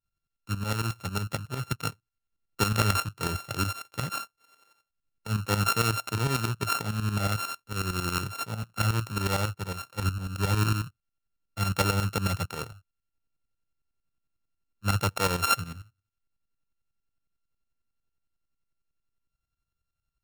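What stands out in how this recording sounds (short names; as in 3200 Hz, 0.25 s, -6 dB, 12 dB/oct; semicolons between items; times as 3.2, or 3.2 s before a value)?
a buzz of ramps at a fixed pitch in blocks of 32 samples; tremolo saw up 11 Hz, depth 75%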